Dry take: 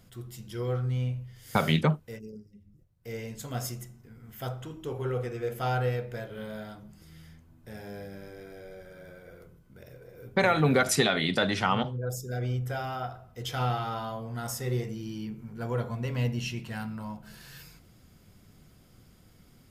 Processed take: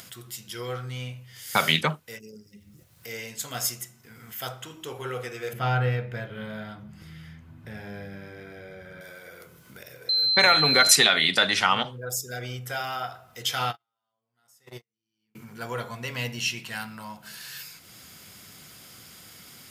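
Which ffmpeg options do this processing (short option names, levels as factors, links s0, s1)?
-filter_complex "[0:a]asettb=1/sr,asplit=3[s0][s1][s2];[s0]atrim=end=5.534[s3];[s1]atrim=start=5.53:end=9.01,asetpts=PTS-STARTPTS,afade=t=in:d=0.004:c=qsin,afade=t=out:st=3.476:d=0.004:c=qsin,bass=f=250:g=13,treble=f=4000:g=-15[s4];[s2]atrim=start=9.006[s5];[s3][s4]acrossfade=d=0.004:c1=hsin:c2=qsin[s6];[s6][s5]acrossfade=d=0.004:c1=qsin:c2=hsin,asettb=1/sr,asplit=3[s7][s8][s9];[s7]atrim=end=10.094[s10];[s8]atrim=start=10.09:end=10.96,asetpts=PTS-STARTPTS,afade=t=in:d=0.004:c=qsin,afade=t=out:st=0.866:d=0.004:c=qsin,aeval=exprs='val(0)+0.0316*sin(2*PI*4100*n/s)':c=same[s11];[s9]atrim=start=10.956[s12];[s10][s11]acrossfade=d=0.004:c1=hsin:c2=qsin[s13];[s13][s12]acrossfade=d=0.004:c1=qsin:c2=hsin,asplit=3[s14][s15][s16];[s14]afade=t=out:st=13.7:d=0.02[s17];[s15]agate=range=0.00158:threshold=0.0501:ratio=16:release=100:detection=peak,afade=t=in:st=13.7:d=0.02,afade=t=out:st=15.35:d=0.02[s18];[s16]afade=t=in:st=15.35:d=0.02[s19];[s17][s18][s19]amix=inputs=3:normalize=0,highpass=95,tiltshelf=f=840:g=-8.5,acompressor=mode=upward:threshold=0.00891:ratio=2.5,volume=1.33"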